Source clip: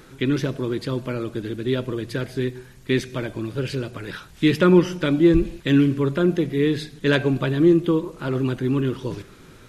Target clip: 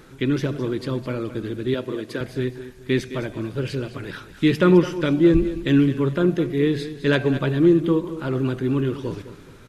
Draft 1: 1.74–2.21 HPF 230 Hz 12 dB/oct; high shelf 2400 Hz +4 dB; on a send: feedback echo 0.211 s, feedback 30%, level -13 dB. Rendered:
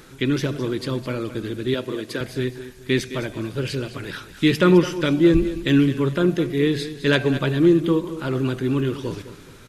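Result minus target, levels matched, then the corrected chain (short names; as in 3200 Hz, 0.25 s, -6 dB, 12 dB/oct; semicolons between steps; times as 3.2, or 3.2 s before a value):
4000 Hz band +4.5 dB
1.74–2.21 HPF 230 Hz 12 dB/oct; high shelf 2400 Hz -3 dB; on a send: feedback echo 0.211 s, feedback 30%, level -13 dB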